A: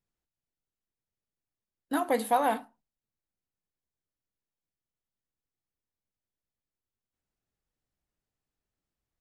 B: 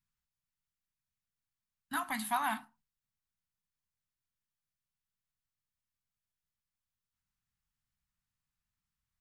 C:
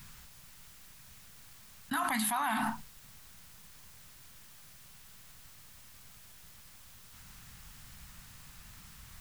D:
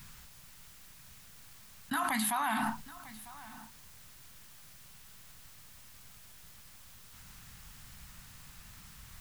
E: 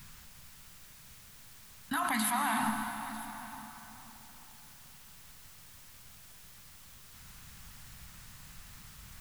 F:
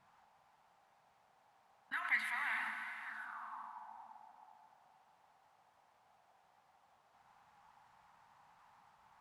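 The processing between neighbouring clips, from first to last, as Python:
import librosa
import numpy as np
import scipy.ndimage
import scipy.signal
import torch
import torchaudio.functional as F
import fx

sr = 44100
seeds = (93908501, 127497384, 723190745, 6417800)

y1 = scipy.signal.sosfilt(scipy.signal.cheby1(2, 1.0, [180.0, 1100.0], 'bandstop', fs=sr, output='sos'), x)
y2 = fx.env_flatten(y1, sr, amount_pct=100)
y2 = y2 * librosa.db_to_amplitude(-3.0)
y3 = y2 + 10.0 ** (-18.5 / 20.0) * np.pad(y2, (int(948 * sr / 1000.0), 0))[:len(y2)]
y4 = fx.rev_plate(y3, sr, seeds[0], rt60_s=3.7, hf_ratio=0.85, predelay_ms=105, drr_db=5.0)
y5 = fx.auto_wah(y4, sr, base_hz=630.0, top_hz=2000.0, q=5.4, full_db=-35.0, direction='up')
y5 = y5 * librosa.db_to_amplitude(5.0)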